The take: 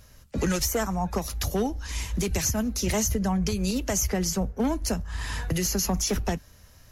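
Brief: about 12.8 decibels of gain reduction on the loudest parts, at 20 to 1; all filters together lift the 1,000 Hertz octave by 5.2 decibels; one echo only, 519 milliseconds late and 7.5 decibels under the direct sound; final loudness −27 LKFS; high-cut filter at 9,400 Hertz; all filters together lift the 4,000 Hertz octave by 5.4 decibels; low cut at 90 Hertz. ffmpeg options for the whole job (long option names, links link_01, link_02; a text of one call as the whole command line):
ffmpeg -i in.wav -af "highpass=90,lowpass=9400,equalizer=frequency=1000:width_type=o:gain=6.5,equalizer=frequency=4000:width_type=o:gain=7.5,acompressor=threshold=-33dB:ratio=20,aecho=1:1:519:0.422,volume=9.5dB" out.wav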